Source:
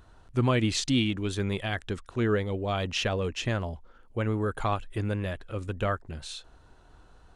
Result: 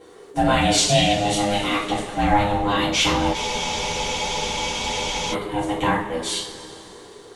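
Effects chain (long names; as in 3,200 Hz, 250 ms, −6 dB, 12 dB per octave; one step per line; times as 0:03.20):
high-shelf EQ 5,100 Hz +10 dB
in parallel at −3 dB: brickwall limiter −23 dBFS, peak gain reduction 11 dB
on the sum: ring modulation 410 Hz
coupled-rooms reverb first 0.42 s, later 3.3 s, from −18 dB, DRR −8.5 dB
frozen spectrum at 0:03.37, 1.97 s
level −1 dB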